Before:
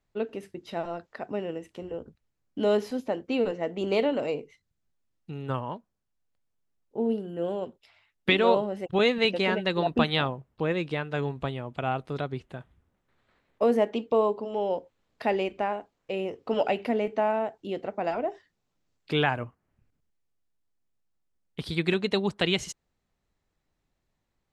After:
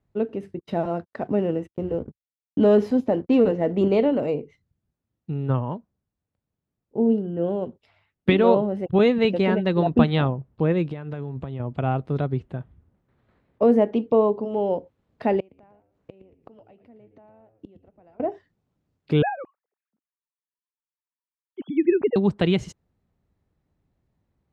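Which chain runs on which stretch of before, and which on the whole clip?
0:00.59–0:03.88: leveller curve on the samples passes 1 + noise gate −48 dBFS, range −37 dB
0:10.90–0:11.60: high-pass filter 48 Hz + downward compressor 12 to 1, threshold −34 dBFS
0:15.40–0:18.20: downward compressor 1.5 to 1, threshold −37 dBFS + gate with flip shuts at −34 dBFS, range −25 dB + echo with shifted repeats 114 ms, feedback 36%, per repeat −110 Hz, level −13 dB
0:19.22–0:22.16: three sine waves on the formant tracks + high-frequency loss of the air 290 metres
whole clip: high-pass filter 80 Hz; spectral tilt −3.5 dB per octave; level +1 dB

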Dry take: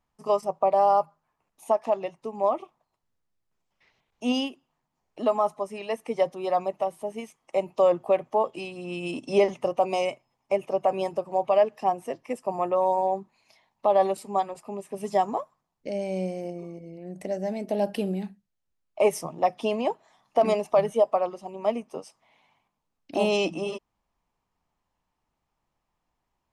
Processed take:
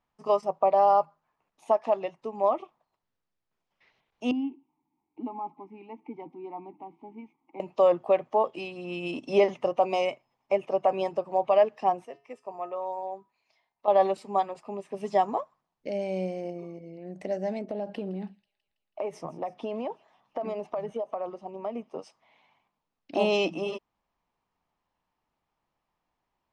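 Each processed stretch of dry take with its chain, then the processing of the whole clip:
0:04.31–0:07.60: mu-law and A-law mismatch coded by mu + formant filter u + spectral tilt −3.5 dB per octave
0:12.05–0:13.88: parametric band 170 Hz −6.5 dB 0.99 octaves + tuned comb filter 140 Hz, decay 0.37 s, harmonics odd, mix 70%
0:17.59–0:21.99: high-shelf EQ 2,000 Hz −10 dB + downward compressor 10 to 1, threshold −27 dBFS + delay with a high-pass on its return 163 ms, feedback 58%, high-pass 3,200 Hz, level −17 dB
whole clip: low-pass filter 4,800 Hz 12 dB per octave; low-shelf EQ 140 Hz −7.5 dB

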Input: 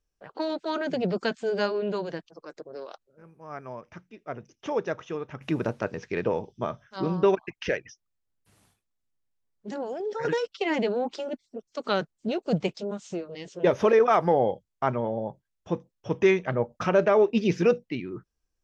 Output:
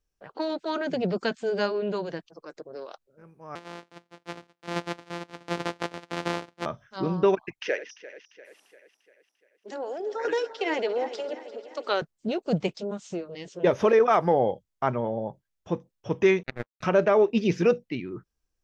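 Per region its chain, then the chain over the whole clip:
0:03.55–0:06.66: samples sorted by size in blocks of 256 samples + band-pass filter 270–5,000 Hz
0:07.59–0:12.02: feedback delay that plays each chunk backwards 173 ms, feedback 72%, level −14 dB + high-pass filter 330 Hz 24 dB per octave
0:16.43–0:16.83: lower of the sound and its delayed copy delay 0.48 ms + high-shelf EQ 4,500 Hz −6 dB + power curve on the samples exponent 3
whole clip: no processing

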